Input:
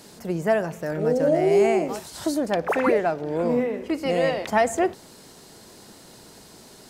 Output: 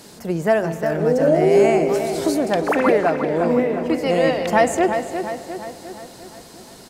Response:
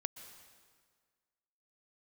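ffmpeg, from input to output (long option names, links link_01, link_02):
-filter_complex "[0:a]asplit=2[link_01][link_02];[link_02]adelay=353,lowpass=frequency=4300:poles=1,volume=-8dB,asplit=2[link_03][link_04];[link_04]adelay=353,lowpass=frequency=4300:poles=1,volume=0.55,asplit=2[link_05][link_06];[link_06]adelay=353,lowpass=frequency=4300:poles=1,volume=0.55,asplit=2[link_07][link_08];[link_08]adelay=353,lowpass=frequency=4300:poles=1,volume=0.55,asplit=2[link_09][link_10];[link_10]adelay=353,lowpass=frequency=4300:poles=1,volume=0.55,asplit=2[link_11][link_12];[link_12]adelay=353,lowpass=frequency=4300:poles=1,volume=0.55,asplit=2[link_13][link_14];[link_14]adelay=353,lowpass=frequency=4300:poles=1,volume=0.55[link_15];[link_01][link_03][link_05][link_07][link_09][link_11][link_13][link_15]amix=inputs=8:normalize=0,asplit=2[link_16][link_17];[1:a]atrim=start_sample=2205,asetrate=37044,aresample=44100[link_18];[link_17][link_18]afir=irnorm=-1:irlink=0,volume=-4dB[link_19];[link_16][link_19]amix=inputs=2:normalize=0"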